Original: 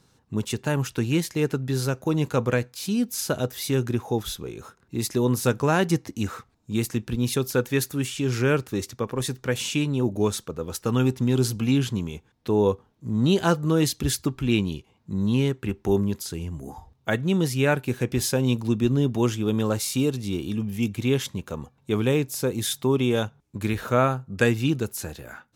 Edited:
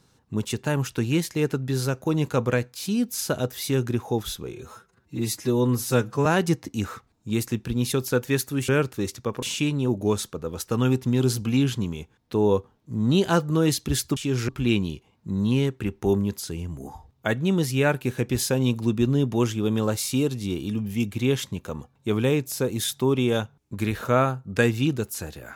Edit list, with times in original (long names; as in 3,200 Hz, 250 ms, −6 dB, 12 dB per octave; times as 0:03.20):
0:04.53–0:05.68: time-stretch 1.5×
0:08.11–0:08.43: move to 0:14.31
0:09.17–0:09.57: remove